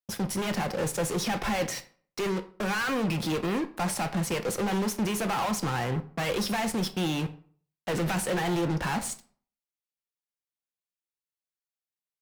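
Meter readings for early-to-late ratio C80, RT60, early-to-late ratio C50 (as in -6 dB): 19.0 dB, 0.50 s, 15.0 dB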